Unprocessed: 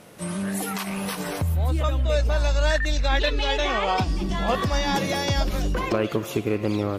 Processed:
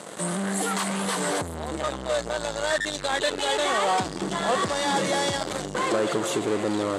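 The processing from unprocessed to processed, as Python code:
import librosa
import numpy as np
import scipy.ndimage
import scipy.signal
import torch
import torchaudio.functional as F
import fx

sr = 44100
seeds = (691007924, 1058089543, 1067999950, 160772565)

p1 = fx.fuzz(x, sr, gain_db=43.0, gate_db=-47.0)
p2 = x + (p1 * 10.0 ** (-7.0 / 20.0))
p3 = fx.cabinet(p2, sr, low_hz=220.0, low_slope=12, high_hz=9400.0, hz=(250.0, 2500.0, 5400.0, 8000.0), db=(-4, -8, -7, 7))
y = p3 * 10.0 ** (-5.5 / 20.0)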